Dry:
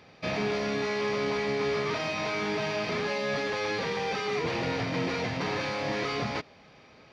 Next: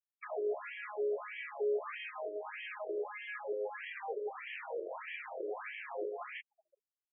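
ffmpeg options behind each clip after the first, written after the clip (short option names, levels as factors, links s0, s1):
-filter_complex "[0:a]afftfilt=real='re*gte(hypot(re,im),0.00891)':imag='im*gte(hypot(re,im),0.00891)':win_size=1024:overlap=0.75,acrossover=split=430[s0][s1];[s1]acompressor=threshold=0.00708:ratio=2[s2];[s0][s2]amix=inputs=2:normalize=0,afftfilt=real='re*between(b*sr/1024,430*pow(2400/430,0.5+0.5*sin(2*PI*1.6*pts/sr))/1.41,430*pow(2400/430,0.5+0.5*sin(2*PI*1.6*pts/sr))*1.41)':imag='im*between(b*sr/1024,430*pow(2400/430,0.5+0.5*sin(2*PI*1.6*pts/sr))/1.41,430*pow(2400/430,0.5+0.5*sin(2*PI*1.6*pts/sr))*1.41)':win_size=1024:overlap=0.75,volume=1.12"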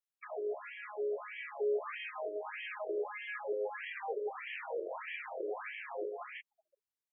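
-af "dynaudnorm=f=420:g=7:m=1.58,volume=0.75"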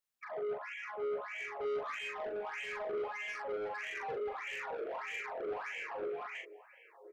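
-filter_complex "[0:a]aecho=1:1:1031|2062:0.0944|0.0189,asoftclip=type=tanh:threshold=0.0106,asplit=2[s0][s1];[s1]adelay=41,volume=0.631[s2];[s0][s2]amix=inputs=2:normalize=0,volume=1.33"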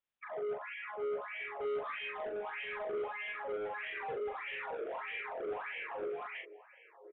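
-af "aresample=8000,aresample=44100"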